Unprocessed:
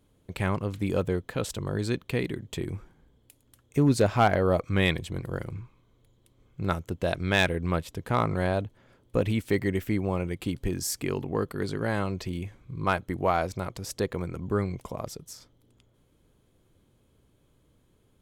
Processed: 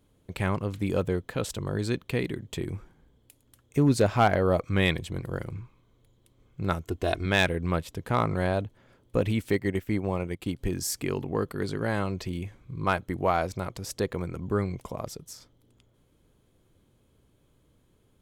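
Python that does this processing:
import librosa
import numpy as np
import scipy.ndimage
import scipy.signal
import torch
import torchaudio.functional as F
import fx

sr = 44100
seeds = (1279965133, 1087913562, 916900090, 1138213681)

y = fx.comb(x, sr, ms=2.8, depth=0.64, at=(6.82, 7.26))
y = fx.transient(y, sr, attack_db=-1, sustain_db=-9, at=(9.53, 10.59))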